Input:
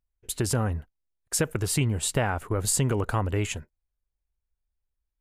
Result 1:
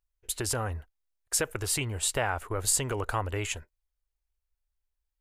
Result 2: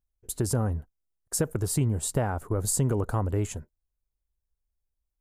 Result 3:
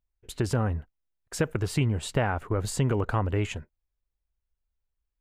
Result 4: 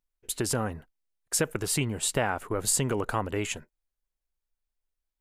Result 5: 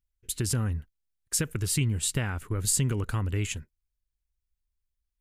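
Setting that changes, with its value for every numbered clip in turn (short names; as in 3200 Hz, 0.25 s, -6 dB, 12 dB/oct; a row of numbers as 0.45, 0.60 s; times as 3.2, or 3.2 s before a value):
bell, frequency: 180, 2600, 11000, 68, 700 Hz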